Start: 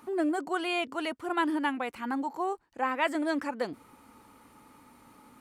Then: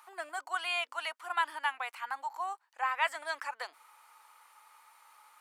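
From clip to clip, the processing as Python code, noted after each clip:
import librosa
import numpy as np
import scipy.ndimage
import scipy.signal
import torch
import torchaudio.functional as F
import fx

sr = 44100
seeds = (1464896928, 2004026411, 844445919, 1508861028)

y = scipy.signal.sosfilt(scipy.signal.butter(4, 830.0, 'highpass', fs=sr, output='sos'), x)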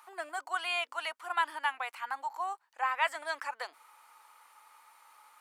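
y = fx.low_shelf(x, sr, hz=460.0, db=5.0)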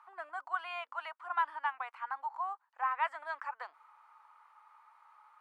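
y = fx.bandpass_q(x, sr, hz=1100.0, q=1.7)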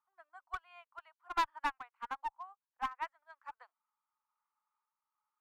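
y = fx.tremolo_random(x, sr, seeds[0], hz=3.5, depth_pct=55)
y = fx.clip_asym(y, sr, top_db=-35.0, bottom_db=-26.5)
y = fx.upward_expand(y, sr, threshold_db=-52.0, expansion=2.5)
y = y * librosa.db_to_amplitude(5.5)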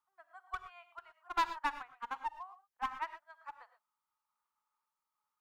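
y = fx.rev_gated(x, sr, seeds[1], gate_ms=140, shape='rising', drr_db=10.0)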